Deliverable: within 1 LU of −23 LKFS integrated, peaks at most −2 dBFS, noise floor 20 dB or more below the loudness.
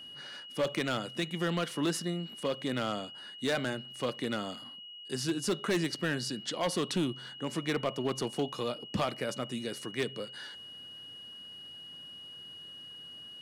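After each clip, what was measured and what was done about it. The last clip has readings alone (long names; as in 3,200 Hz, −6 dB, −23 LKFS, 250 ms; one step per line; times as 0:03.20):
share of clipped samples 0.9%; peaks flattened at −24.0 dBFS; interfering tone 2,900 Hz; level of the tone −45 dBFS; integrated loudness −35.0 LKFS; sample peak −24.0 dBFS; target loudness −23.0 LKFS
→ clipped peaks rebuilt −24 dBFS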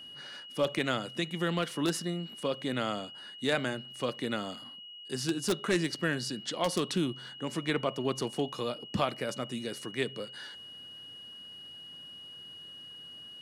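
share of clipped samples 0.0%; interfering tone 2,900 Hz; level of the tone −45 dBFS
→ notch filter 2,900 Hz, Q 30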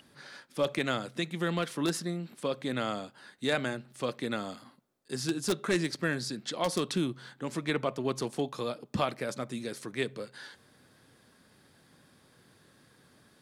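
interfering tone none found; integrated loudness −33.5 LKFS; sample peak −15.0 dBFS; target loudness −23.0 LKFS
→ level +10.5 dB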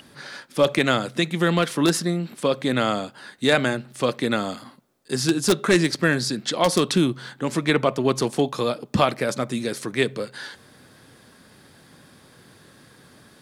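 integrated loudness −23.0 LKFS; sample peak −4.5 dBFS; background noise floor −53 dBFS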